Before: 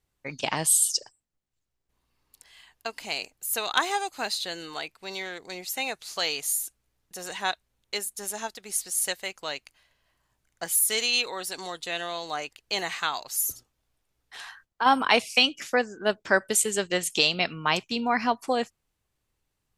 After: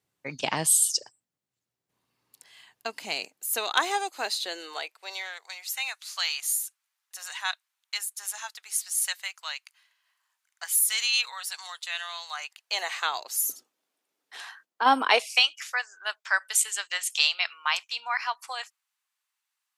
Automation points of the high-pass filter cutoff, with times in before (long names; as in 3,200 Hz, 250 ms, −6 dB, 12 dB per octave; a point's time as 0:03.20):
high-pass filter 24 dB per octave
0:02.93 110 Hz
0:03.79 310 Hz
0:04.46 310 Hz
0:05.64 1,000 Hz
0:12.37 1,000 Hz
0:13.50 250 Hz
0:14.99 250 Hz
0:15.50 990 Hz